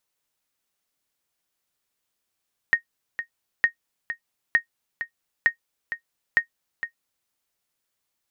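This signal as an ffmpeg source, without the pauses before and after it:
ffmpeg -f lavfi -i "aevalsrc='0.376*(sin(2*PI*1860*mod(t,0.91))*exp(-6.91*mod(t,0.91)/0.1)+0.282*sin(2*PI*1860*max(mod(t,0.91)-0.46,0))*exp(-6.91*max(mod(t,0.91)-0.46,0)/0.1))':duration=4.55:sample_rate=44100" out.wav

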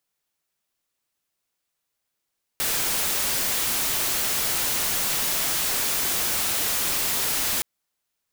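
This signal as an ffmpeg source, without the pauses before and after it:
ffmpeg -f lavfi -i "anoisesrc=color=white:amplitude=0.103:duration=5.02:sample_rate=44100:seed=1" out.wav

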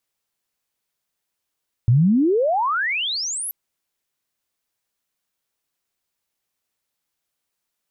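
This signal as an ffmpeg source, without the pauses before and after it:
ffmpeg -f lavfi -i "aevalsrc='pow(10,(-11-14*t/1.63)/20)*sin(2*PI*110*1.63/log(12000/110)*(exp(log(12000/110)*t/1.63)-1))':duration=1.63:sample_rate=44100" out.wav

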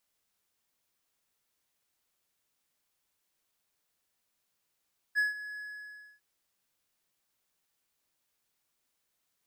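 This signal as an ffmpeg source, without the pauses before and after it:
ffmpeg -f lavfi -i "aevalsrc='0.0891*(1-4*abs(mod(1690*t+0.25,1)-0.5))':duration=1.051:sample_rate=44100,afade=type=in:duration=0.035,afade=type=out:start_time=0.035:duration=0.15:silence=0.168,afade=type=out:start_time=0.43:duration=0.621" out.wav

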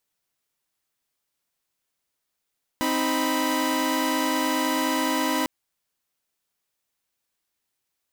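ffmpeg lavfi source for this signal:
ffmpeg -f lavfi -i "aevalsrc='0.0631*((2*mod(261.63*t,1)-1)+(2*mod(311.13*t,1)-1)+(2*mod(987.77*t,1)-1))':duration=2.65:sample_rate=44100" out.wav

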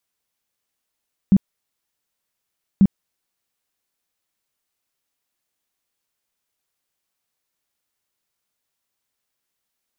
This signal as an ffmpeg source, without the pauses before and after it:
ffmpeg -f lavfi -i "aevalsrc='0.398*sin(2*PI*195*mod(t,1.49))*lt(mod(t,1.49),9/195)':duration=2.98:sample_rate=44100" out.wav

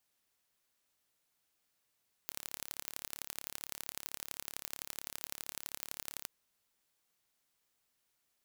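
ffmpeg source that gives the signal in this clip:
ffmpeg -f lavfi -i "aevalsrc='0.266*eq(mod(n,1239),0)*(0.5+0.5*eq(mod(n,3717),0))':duration=3.98:sample_rate=44100" out.wav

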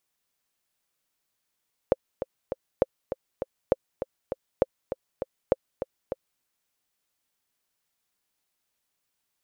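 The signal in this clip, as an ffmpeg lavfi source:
ffmpeg -f lavfi -i "aevalsrc='pow(10,(-6-10*gte(mod(t,3*60/200),60/200))/20)*sin(2*PI*528*mod(t,60/200))*exp(-6.91*mod(t,60/200)/0.03)':duration=4.5:sample_rate=44100" out.wav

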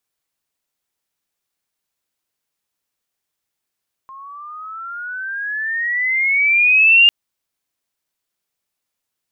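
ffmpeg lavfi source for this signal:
ffmpeg -f lavfi -i "aevalsrc='pow(10,(-6+28*(t/3-1))/20)*sin(2*PI*1060*3/(17*log(2)/12)*(exp(17*log(2)/12*t/3)-1))':duration=3:sample_rate=44100" out.wav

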